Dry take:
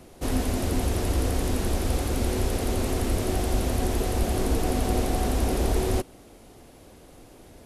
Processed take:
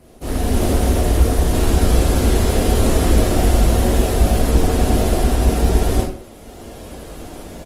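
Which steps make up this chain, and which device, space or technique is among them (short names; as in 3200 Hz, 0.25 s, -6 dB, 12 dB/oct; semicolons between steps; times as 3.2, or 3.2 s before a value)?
speakerphone in a meeting room (reverb RT60 0.40 s, pre-delay 22 ms, DRR -2.5 dB; speakerphone echo 0.18 s, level -23 dB; AGC gain up to 11.5 dB; gain -1 dB; Opus 20 kbps 48000 Hz)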